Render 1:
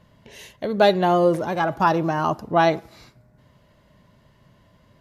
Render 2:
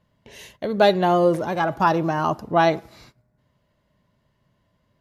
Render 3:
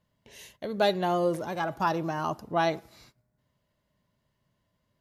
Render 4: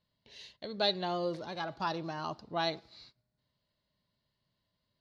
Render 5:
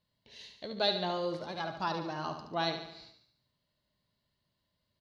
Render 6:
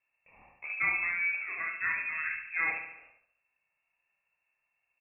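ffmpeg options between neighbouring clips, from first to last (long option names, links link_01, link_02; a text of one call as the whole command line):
ffmpeg -i in.wav -af "agate=range=-11dB:threshold=-50dB:ratio=16:detection=peak" out.wav
ffmpeg -i in.wav -af "highshelf=frequency=4400:gain=7.5,volume=-8.5dB" out.wav
ffmpeg -i in.wav -af "lowpass=frequency=4300:width_type=q:width=5.2,volume=-8dB" out.wav
ffmpeg -i in.wav -af "aecho=1:1:72|144|216|288|360|432:0.398|0.215|0.116|0.0627|0.0339|0.0183" out.wav
ffmpeg -i in.wav -af "aecho=1:1:27|59:0.631|0.501,lowpass=frequency=2400:width_type=q:width=0.5098,lowpass=frequency=2400:width_type=q:width=0.6013,lowpass=frequency=2400:width_type=q:width=0.9,lowpass=frequency=2400:width_type=q:width=2.563,afreqshift=-2800" out.wav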